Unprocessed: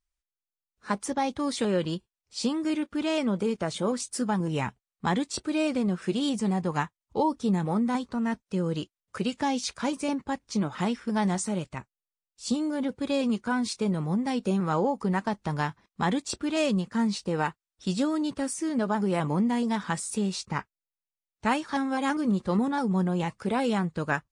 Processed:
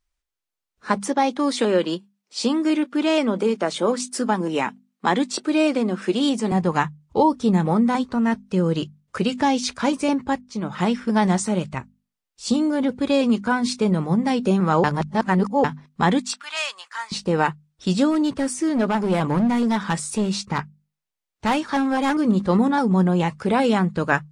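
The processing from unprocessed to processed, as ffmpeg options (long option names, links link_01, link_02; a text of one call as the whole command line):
ffmpeg -i in.wav -filter_complex "[0:a]asettb=1/sr,asplit=3[link_01][link_02][link_03];[link_01]atrim=end=0.974[link_04];[link_02]atrim=start=0.97:end=6.52,asetpts=PTS-STARTPTS,afade=type=in:duration=0.004:curve=qsin,afade=type=out:start_time=5.546:duration=0.004:curve=qsin,highpass=frequency=220:width=0.5412,highpass=frequency=220:width=1.3066[link_05];[link_03]atrim=start=6.516[link_06];[link_04][link_05]acrossfade=duration=0.004:curve1=hsin:curve2=qsin[link_07];[link_07][link_06]acrossfade=duration=0.004:curve1=qsin:curve2=hsin,asettb=1/sr,asplit=3[link_08][link_09][link_10];[link_08]atrim=end=16.204[link_11];[link_09]atrim=start=16.2:end=17.12,asetpts=PTS-STARTPTS,afade=type=in:duration=0.004:curve=qsin,afade=type=out:start_time=0.916:duration=0.004:curve=qsin,highpass=frequency=1000:width=0.5412,highpass=frequency=1000:width=1.3066[link_12];[link_10]atrim=start=17.116[link_13];[link_11][link_12]acrossfade=duration=0.004:curve1=hsin:curve2=qsin[link_14];[link_14][link_13]acrossfade=duration=0.004:curve1=qsin:curve2=hsin,asplit=3[link_15][link_16][link_17];[link_15]afade=type=out:start_time=18.1:duration=0.02[link_18];[link_16]asoftclip=type=hard:threshold=-23.5dB,afade=type=in:start_time=18.1:duration=0.02,afade=type=out:start_time=22.19:duration=0.02[link_19];[link_17]afade=type=in:start_time=22.19:duration=0.02[link_20];[link_18][link_19][link_20]amix=inputs=3:normalize=0,asplit=4[link_21][link_22][link_23][link_24];[link_21]atrim=end=10.41,asetpts=PTS-STARTPTS,afade=type=out:start_time=10.406:duration=0.004:curve=hsin:silence=0.158489[link_25];[link_22]atrim=start=10.41:end=14.842,asetpts=PTS-STARTPTS,afade=type=in:duration=0.51:silence=0.158489[link_26];[link_23]atrim=start=14.838:end=15.642,asetpts=PTS-STARTPTS,areverse[link_27];[link_24]atrim=start=15.638[link_28];[link_25][link_26]concat=n=2:v=0:a=1[link_29];[link_29][link_27]acrossfade=duration=0.004:curve1=hsin:curve2=hsin[link_30];[link_30][link_28]acrossfade=duration=0.004:curve1=hsin:curve2=hsin,highshelf=frequency=7000:gain=-6.5,bandreject=frequency=50:width_type=h:width=6,bandreject=frequency=100:width_type=h:width=6,bandreject=frequency=150:width_type=h:width=6,bandreject=frequency=200:width_type=h:width=6,bandreject=frequency=250:width_type=h:width=6,volume=8dB" out.wav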